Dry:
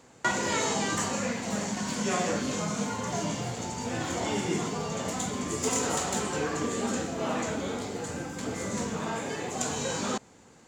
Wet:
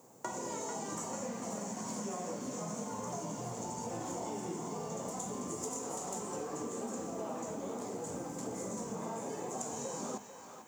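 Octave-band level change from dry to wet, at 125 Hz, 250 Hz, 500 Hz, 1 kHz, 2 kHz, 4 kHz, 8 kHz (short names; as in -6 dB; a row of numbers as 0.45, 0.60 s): -10.5, -9.0, -7.5, -8.5, -18.5, -16.5, -8.5 dB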